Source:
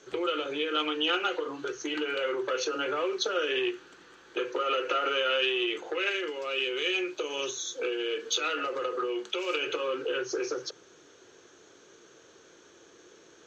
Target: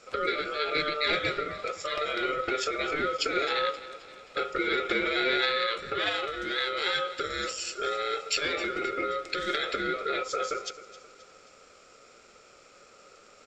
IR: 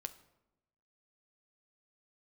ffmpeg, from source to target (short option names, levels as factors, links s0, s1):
-filter_complex "[0:a]asplit=2[s0][s1];[s1]aecho=0:1:264|528|792|1056:0.15|0.0748|0.0374|0.0187[s2];[s0][s2]amix=inputs=2:normalize=0,aeval=exprs='val(0)*sin(2*PI*900*n/s)':c=same,volume=1.5"